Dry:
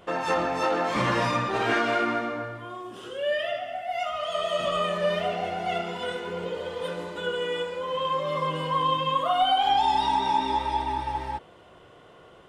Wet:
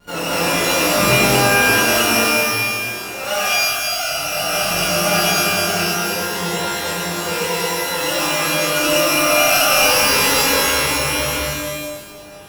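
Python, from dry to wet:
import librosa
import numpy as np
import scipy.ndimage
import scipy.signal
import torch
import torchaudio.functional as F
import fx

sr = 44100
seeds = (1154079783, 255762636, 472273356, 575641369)

p1 = np.r_[np.sort(x[:len(x) // 32 * 32].reshape(-1, 32), axis=1).ravel(), x[len(x) // 32 * 32:]]
p2 = fx.low_shelf(p1, sr, hz=160.0, db=11.5)
p3 = p2 + fx.echo_single(p2, sr, ms=86, db=-3.5, dry=0)
p4 = fx.vibrato(p3, sr, rate_hz=4.6, depth_cents=90.0)
p5 = fx.rev_shimmer(p4, sr, seeds[0], rt60_s=1.1, semitones=12, shimmer_db=-2, drr_db=-9.5)
y = p5 * librosa.db_to_amplitude(-6.5)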